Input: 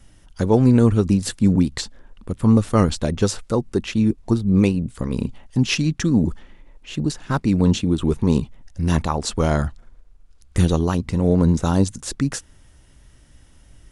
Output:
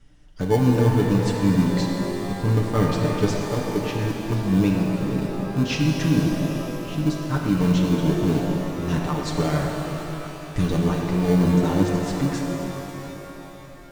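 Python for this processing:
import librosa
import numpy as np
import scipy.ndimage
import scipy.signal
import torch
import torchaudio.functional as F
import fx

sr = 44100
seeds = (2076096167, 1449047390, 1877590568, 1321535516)

p1 = scipy.signal.sosfilt(scipy.signal.butter(2, 6100.0, 'lowpass', fs=sr, output='sos'), x)
p2 = p1 + 0.72 * np.pad(p1, (int(6.7 * sr / 1000.0), 0))[:len(p1)]
p3 = fx.sample_hold(p2, sr, seeds[0], rate_hz=1300.0, jitter_pct=0)
p4 = p2 + (p3 * 10.0 ** (-10.0 / 20.0))
p5 = fx.rev_shimmer(p4, sr, seeds[1], rt60_s=3.7, semitones=12, shimmer_db=-8, drr_db=0.0)
y = p5 * 10.0 ** (-8.0 / 20.0)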